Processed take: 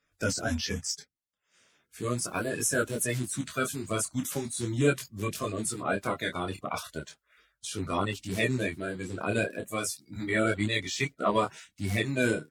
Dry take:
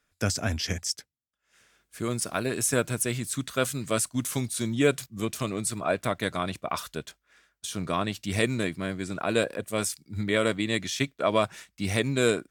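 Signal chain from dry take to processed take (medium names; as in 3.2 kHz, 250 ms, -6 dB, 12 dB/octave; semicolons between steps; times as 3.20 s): coarse spectral quantiser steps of 30 dB; detune thickener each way 13 cents; trim +2 dB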